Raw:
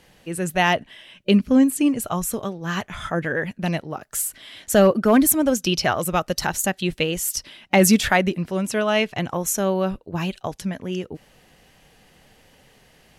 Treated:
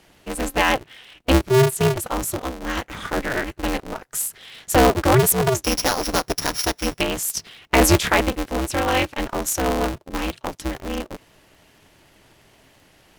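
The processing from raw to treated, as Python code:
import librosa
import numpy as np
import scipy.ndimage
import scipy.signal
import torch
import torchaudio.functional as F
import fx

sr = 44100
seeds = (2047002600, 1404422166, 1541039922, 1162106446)

y = fx.sample_sort(x, sr, block=8, at=(5.64, 7.01))
y = y * np.sign(np.sin(2.0 * np.pi * 130.0 * np.arange(len(y)) / sr))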